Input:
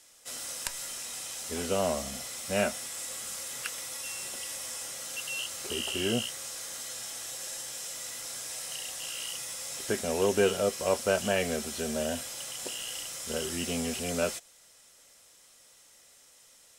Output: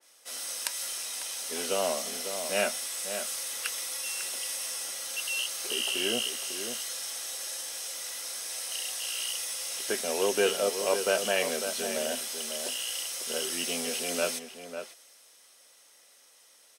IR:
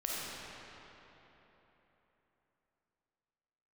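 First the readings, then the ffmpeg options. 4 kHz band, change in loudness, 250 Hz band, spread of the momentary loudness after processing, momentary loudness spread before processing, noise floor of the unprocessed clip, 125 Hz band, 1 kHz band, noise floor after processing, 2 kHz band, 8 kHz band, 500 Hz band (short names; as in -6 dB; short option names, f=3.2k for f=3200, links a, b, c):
+4.0 dB, +2.0 dB, -5.0 dB, 8 LU, 9 LU, -58 dBFS, under -10 dB, +0.5 dB, -59 dBFS, +2.5 dB, +3.0 dB, 0.0 dB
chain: -filter_complex "[0:a]highpass=320,bandreject=f=7.3k:w=6.2,asplit=2[a][b];[b]adelay=548.1,volume=-8dB,highshelf=f=4k:g=-12.3[c];[a][c]amix=inputs=2:normalize=0,adynamicequalizer=threshold=0.00501:dfrequency=2200:dqfactor=0.7:tfrequency=2200:tqfactor=0.7:attack=5:release=100:ratio=0.375:range=2.5:mode=boostabove:tftype=highshelf"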